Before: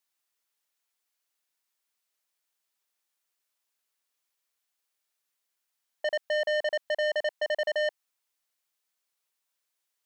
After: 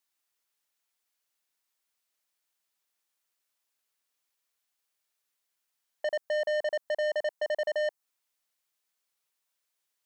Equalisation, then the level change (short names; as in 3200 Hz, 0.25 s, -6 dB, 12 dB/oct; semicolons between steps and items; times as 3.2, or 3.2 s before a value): dynamic EQ 2900 Hz, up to -7 dB, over -45 dBFS, Q 0.74; 0.0 dB